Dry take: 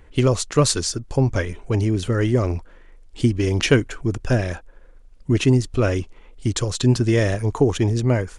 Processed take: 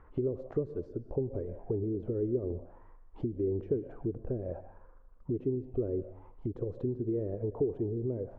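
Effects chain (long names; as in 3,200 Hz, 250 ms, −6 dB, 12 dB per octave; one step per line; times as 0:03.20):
downward compressor 10 to 1, threshold −25 dBFS, peak gain reduction 15.5 dB
on a send at −14 dB: convolution reverb, pre-delay 95 ms
on the sum: envelope-controlled low-pass 410–1,300 Hz down, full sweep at −24.5 dBFS
level −9 dB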